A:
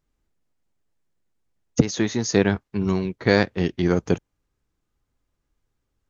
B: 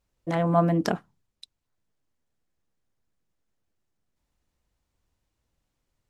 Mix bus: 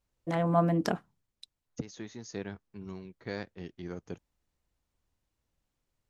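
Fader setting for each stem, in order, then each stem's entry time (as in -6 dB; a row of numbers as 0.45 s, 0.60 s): -20.0 dB, -4.0 dB; 0.00 s, 0.00 s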